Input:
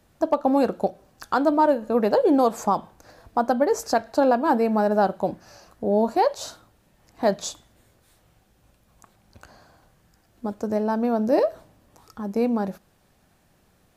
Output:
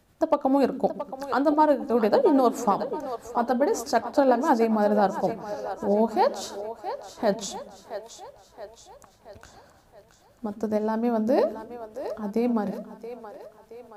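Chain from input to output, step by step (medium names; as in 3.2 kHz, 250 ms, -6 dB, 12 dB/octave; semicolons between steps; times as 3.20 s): tremolo 9.3 Hz, depth 39%; on a send: two-band feedback delay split 350 Hz, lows 124 ms, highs 674 ms, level -11 dB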